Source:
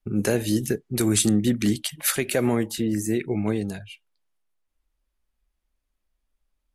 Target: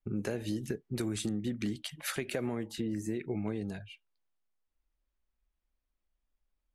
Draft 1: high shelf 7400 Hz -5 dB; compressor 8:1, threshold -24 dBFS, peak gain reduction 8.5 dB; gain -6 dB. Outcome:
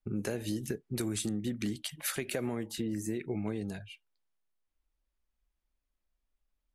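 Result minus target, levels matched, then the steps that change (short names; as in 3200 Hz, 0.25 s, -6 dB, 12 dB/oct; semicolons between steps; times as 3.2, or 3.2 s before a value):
8000 Hz band +4.0 dB
change: high shelf 7400 Hz -15 dB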